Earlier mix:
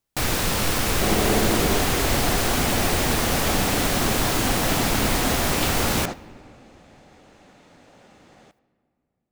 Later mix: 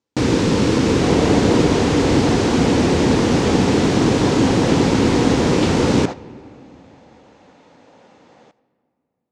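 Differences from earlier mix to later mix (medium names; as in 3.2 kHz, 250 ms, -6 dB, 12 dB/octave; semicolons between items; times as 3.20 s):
first sound: add resonant low shelf 490 Hz +10 dB, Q 1.5; master: add cabinet simulation 100–7000 Hz, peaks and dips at 270 Hz +4 dB, 490 Hz +7 dB, 930 Hz +7 dB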